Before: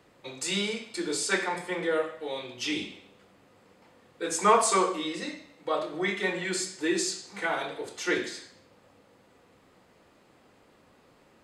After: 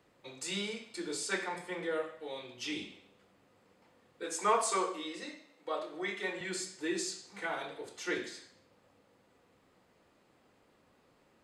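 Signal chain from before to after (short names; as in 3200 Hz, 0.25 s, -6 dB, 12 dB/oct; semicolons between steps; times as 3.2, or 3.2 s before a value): 4.23–6.41 HPF 250 Hz 12 dB/oct; gain -7.5 dB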